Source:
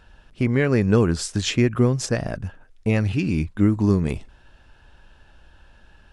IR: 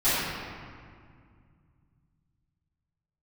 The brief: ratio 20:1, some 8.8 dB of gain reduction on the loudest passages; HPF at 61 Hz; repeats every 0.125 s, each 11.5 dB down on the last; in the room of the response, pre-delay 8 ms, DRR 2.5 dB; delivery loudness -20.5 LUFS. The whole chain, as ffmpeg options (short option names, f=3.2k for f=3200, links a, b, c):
-filter_complex "[0:a]highpass=61,acompressor=threshold=-21dB:ratio=20,aecho=1:1:125|250|375:0.266|0.0718|0.0194,asplit=2[a][b];[1:a]atrim=start_sample=2205,adelay=8[c];[b][c]afir=irnorm=-1:irlink=0,volume=-18.5dB[d];[a][d]amix=inputs=2:normalize=0,volume=5dB"